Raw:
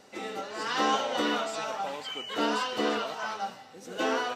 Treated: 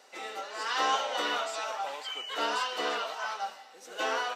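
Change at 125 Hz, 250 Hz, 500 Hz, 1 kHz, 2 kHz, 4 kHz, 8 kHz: under -15 dB, -13.0 dB, -4.5 dB, -0.5 dB, 0.0 dB, 0.0 dB, 0.0 dB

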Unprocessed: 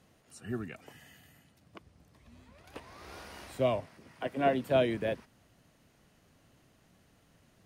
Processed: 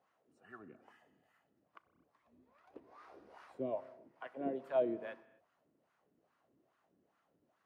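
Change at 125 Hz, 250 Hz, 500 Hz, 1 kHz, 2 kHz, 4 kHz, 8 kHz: -20.0 dB, -8.5 dB, -8.0 dB, -11.5 dB, -13.0 dB, under -20 dB, n/a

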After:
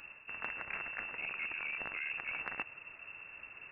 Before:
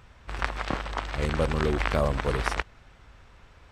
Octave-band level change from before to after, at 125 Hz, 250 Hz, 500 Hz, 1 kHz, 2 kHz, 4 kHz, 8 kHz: -33.0 dB, -25.5 dB, -25.5 dB, -16.0 dB, -4.5 dB, -12.5 dB, under -35 dB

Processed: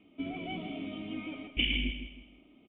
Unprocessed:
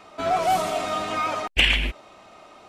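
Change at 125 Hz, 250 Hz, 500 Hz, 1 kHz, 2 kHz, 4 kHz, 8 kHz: -8.0 dB, -0.5 dB, -19.0 dB, -25.0 dB, -12.5 dB, -9.5 dB, under -40 dB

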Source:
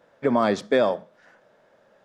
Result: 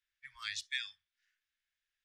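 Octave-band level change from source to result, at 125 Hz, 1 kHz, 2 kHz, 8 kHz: under -30 dB, -29.5 dB, -8.5 dB, n/a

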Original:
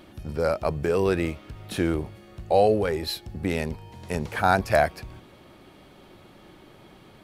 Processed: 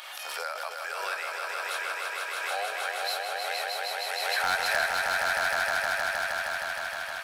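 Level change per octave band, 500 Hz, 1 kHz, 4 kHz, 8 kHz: -11.0, -2.0, +6.0, +7.0 dB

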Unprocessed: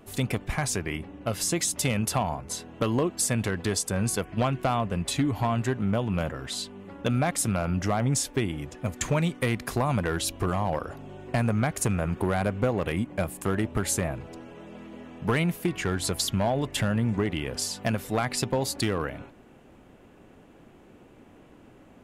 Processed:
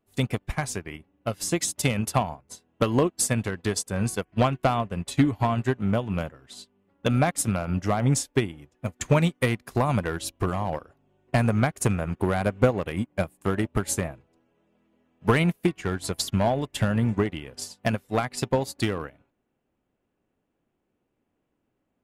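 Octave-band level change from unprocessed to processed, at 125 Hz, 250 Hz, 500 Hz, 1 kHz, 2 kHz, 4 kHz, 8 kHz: +2.0, +1.5, +2.0, +2.0, +1.0, -1.5, -1.5 dB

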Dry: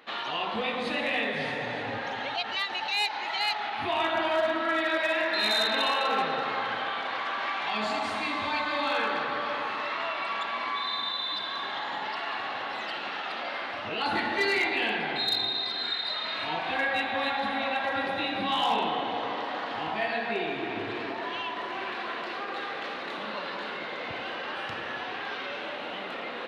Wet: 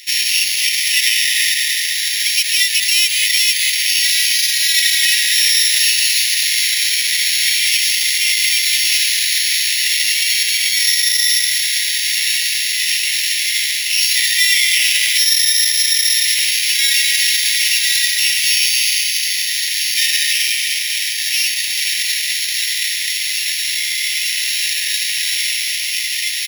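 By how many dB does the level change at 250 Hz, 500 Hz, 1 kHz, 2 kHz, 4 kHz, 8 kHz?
under -40 dB, under -40 dB, under -35 dB, +12.5 dB, +18.5 dB, +39.0 dB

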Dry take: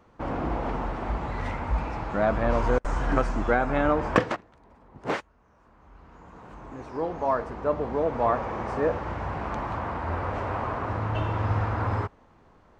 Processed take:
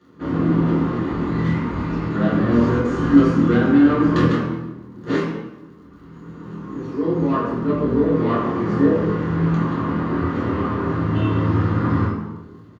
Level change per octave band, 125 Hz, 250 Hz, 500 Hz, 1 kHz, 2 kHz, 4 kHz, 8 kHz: +10.0 dB, +15.5 dB, +4.5 dB, +1.0 dB, +3.0 dB, +6.0 dB, n/a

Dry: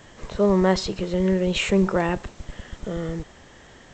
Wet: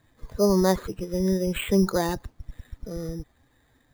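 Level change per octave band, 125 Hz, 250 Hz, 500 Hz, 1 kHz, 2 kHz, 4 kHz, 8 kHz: -2.5, -2.0, -2.0, -3.0, -6.5, -5.5, +1.0 dB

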